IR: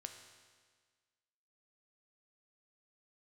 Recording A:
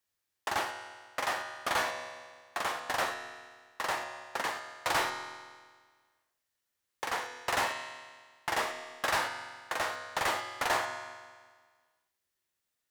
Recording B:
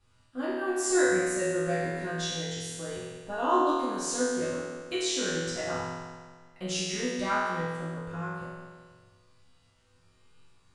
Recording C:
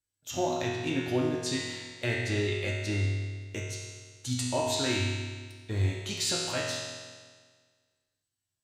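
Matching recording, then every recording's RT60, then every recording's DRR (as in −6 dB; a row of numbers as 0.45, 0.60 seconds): A; 1.6, 1.6, 1.6 seconds; 5.0, −11.5, −5.0 decibels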